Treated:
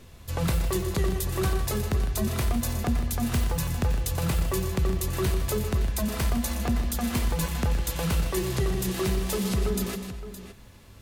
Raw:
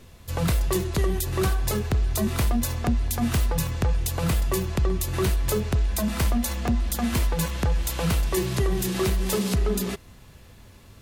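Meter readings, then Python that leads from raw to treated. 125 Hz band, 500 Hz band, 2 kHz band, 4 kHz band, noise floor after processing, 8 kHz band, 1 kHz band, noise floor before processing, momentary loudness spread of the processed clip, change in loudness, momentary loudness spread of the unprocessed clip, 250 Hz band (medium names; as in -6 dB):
-2.0 dB, -2.5 dB, -2.0 dB, -2.0 dB, -48 dBFS, -2.0 dB, -2.0 dB, -49 dBFS, 2 LU, -2.0 dB, 2 LU, -2.0 dB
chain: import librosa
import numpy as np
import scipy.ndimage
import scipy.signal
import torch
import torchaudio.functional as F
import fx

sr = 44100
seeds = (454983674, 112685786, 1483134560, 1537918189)

y = fx.rider(x, sr, range_db=3, speed_s=0.5)
y = fx.echo_multitap(y, sr, ms=(119, 156, 251, 566), db=(-11.0, -11.5, -16.5, -12.5))
y = y * 10.0 ** (-3.0 / 20.0)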